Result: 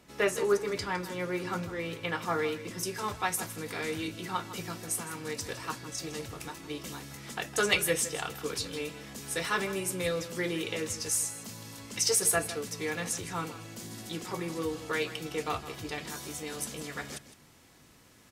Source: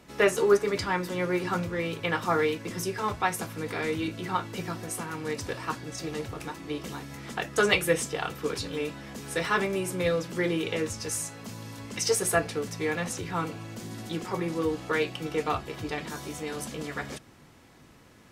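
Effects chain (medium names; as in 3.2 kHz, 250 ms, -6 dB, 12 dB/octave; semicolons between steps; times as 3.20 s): treble shelf 3.5 kHz +4 dB, from 2.83 s +10 dB; delay 159 ms -14 dB; trim -5.5 dB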